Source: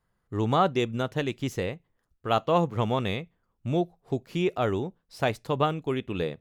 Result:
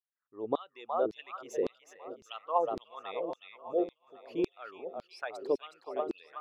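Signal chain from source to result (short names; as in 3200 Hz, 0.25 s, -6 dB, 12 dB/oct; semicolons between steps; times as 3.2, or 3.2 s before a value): formant sharpening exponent 2; split-band echo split 490 Hz, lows 0.646 s, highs 0.367 s, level -8.5 dB; LFO high-pass saw down 1.8 Hz 300–4300 Hz; gain -6.5 dB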